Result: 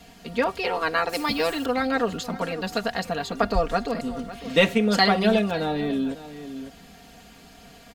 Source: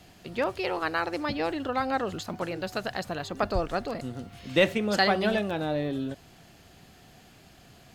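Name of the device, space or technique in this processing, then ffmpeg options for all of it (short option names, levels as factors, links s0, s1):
ducked delay: -filter_complex "[0:a]aecho=1:1:4.3:0.85,asettb=1/sr,asplit=3[s0][s1][s2];[s0]atrim=end=1.094[s3];[s1]atrim=start=1.09:end=1.66,asetpts=PTS-STARTPTS,afade=t=in:d=0.004:c=qsin,afade=t=out:st=0.566:d=0.004:c=qsin,aemphasis=mode=production:type=75fm[s4];[s2]atrim=start=1.656[s5];[s3][s4]acrossfade=d=0.004:c1=hsin:c2=qsin[s6];[s6][s5]acrossfade=d=0.004:c1=qsin:c2=hsin,asplit=3[s7][s8][s9];[s8]adelay=551,volume=0.501[s10];[s9]apad=whole_len=374646[s11];[s10][s11]sidechaincompress=threshold=0.0158:ratio=8:attack=36:release=1040[s12];[s7][s12]amix=inputs=2:normalize=0,volume=1.33"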